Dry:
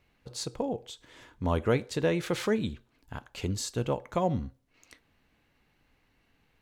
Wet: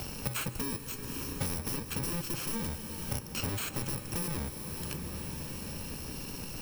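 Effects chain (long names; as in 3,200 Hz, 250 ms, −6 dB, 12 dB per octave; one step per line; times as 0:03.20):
samples in bit-reversed order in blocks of 64 samples
high-shelf EQ 3,300 Hz −7 dB
in parallel at +2 dB: downward compressor, threshold −39 dBFS, peak gain reduction 15.5 dB
on the sum: wave folding −28.5 dBFS
on a send at −11 dB: convolution reverb RT60 3.7 s, pre-delay 110 ms
on the sum: multiband upward and downward compressor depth 100%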